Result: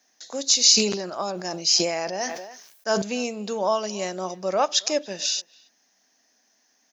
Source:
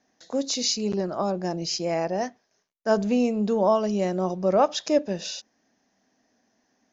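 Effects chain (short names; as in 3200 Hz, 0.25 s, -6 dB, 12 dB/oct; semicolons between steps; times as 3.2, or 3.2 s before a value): tilt +4 dB/oct; speakerphone echo 0.28 s, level -23 dB; 0.67–3.02 sustainer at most 56 dB/s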